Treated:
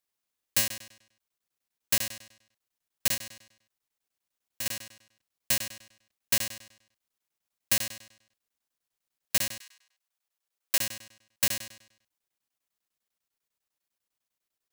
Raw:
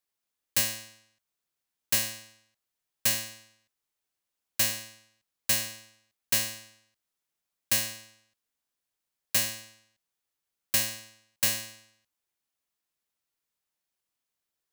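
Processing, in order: 3.14–4.66 compressor 3:1, threshold -33 dBFS, peak gain reduction 9.5 dB; 9.59–10.78 HPF 1100 Hz -> 280 Hz 24 dB/oct; crackling interface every 0.10 s, samples 1024, zero, from 0.68

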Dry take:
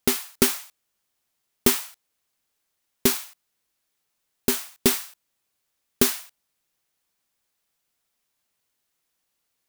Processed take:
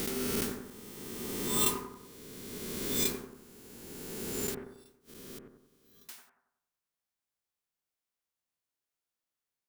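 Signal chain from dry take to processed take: spectral swells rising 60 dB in 2.68 s; spectral noise reduction 16 dB; 4.54–6.09 flipped gate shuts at -31 dBFS, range -33 dB; on a send: analogue delay 92 ms, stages 1024, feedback 47%, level -3.5 dB; on the sum: gain -2.5 dB

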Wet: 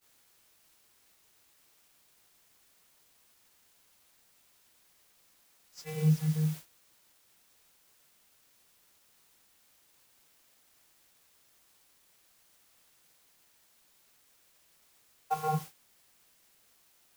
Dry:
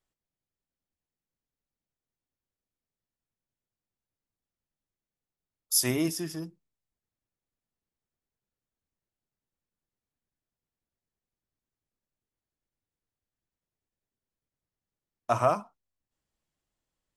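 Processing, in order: vocoder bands 32, square 155 Hz; requantised 8-bit, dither triangular; expander -35 dBFS

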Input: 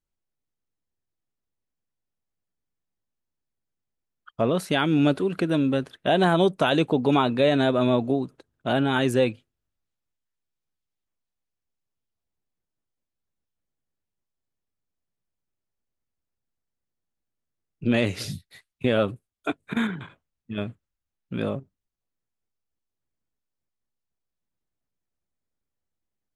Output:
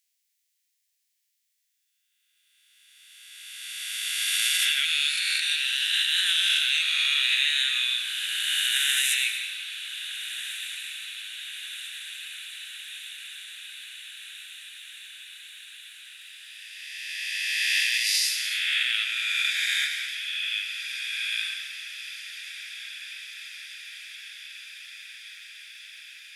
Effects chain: spectral swells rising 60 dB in 2.45 s; steep high-pass 1800 Hz 48 dB/oct; high shelf 2500 Hz +10.5 dB; in parallel at -1.5 dB: compressor 6:1, threshold -37 dBFS, peak gain reduction 20.5 dB; on the sum: limiter -14 dBFS, peak gain reduction 10 dB; hard clip -15 dBFS, distortion -36 dB; diffused feedback echo 1.575 s, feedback 72%, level -12.5 dB; on a send at -5 dB: reverb RT60 1.6 s, pre-delay 80 ms

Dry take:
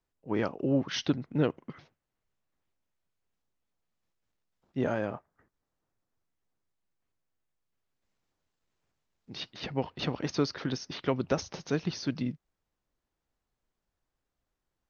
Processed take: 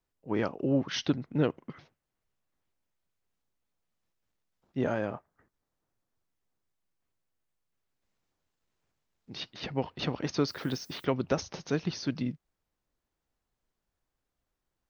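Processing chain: 10.47–11.04 added noise violet -59 dBFS

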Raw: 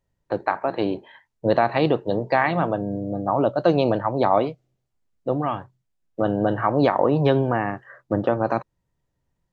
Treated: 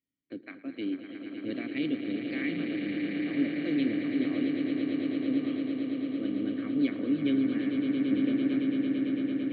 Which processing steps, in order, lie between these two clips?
vowel filter i; high shelf 4200 Hz +7 dB; swelling echo 0.112 s, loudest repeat 8, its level -8.5 dB

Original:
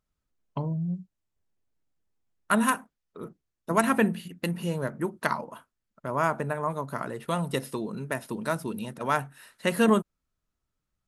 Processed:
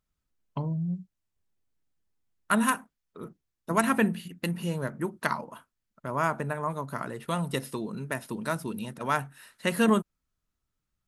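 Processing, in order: bell 550 Hz -3 dB 1.6 oct

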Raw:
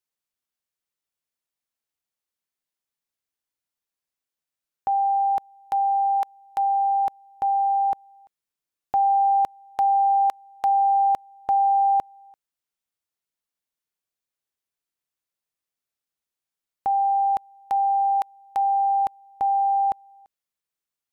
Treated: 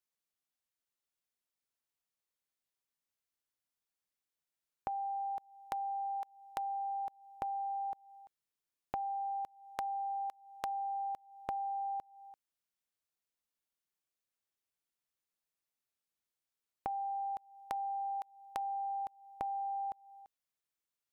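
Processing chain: compressor 16:1, threshold -32 dBFS, peak gain reduction 14.5 dB; gain -4 dB

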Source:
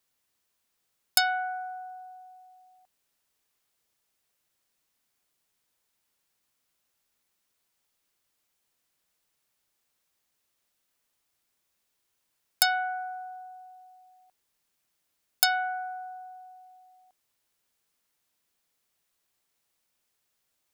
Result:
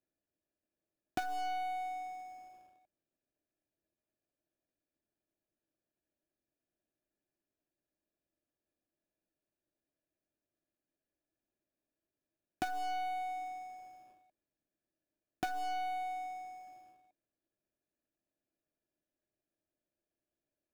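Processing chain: median filter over 41 samples; compressor 2:1, threshold -44 dBFS, peak gain reduction 8 dB; sample leveller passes 2; small resonant body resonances 320/610/1700/2400 Hz, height 11 dB, ringing for 35 ms; gain -3.5 dB

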